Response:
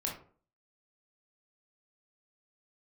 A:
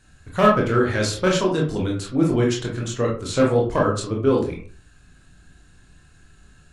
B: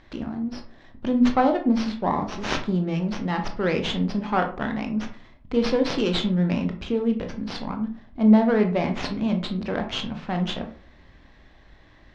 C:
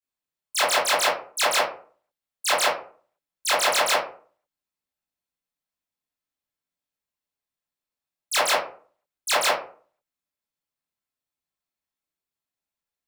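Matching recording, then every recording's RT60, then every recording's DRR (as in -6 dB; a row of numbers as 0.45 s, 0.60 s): A; 0.45 s, 0.45 s, 0.45 s; -2.0 dB, 4.5 dB, -10.0 dB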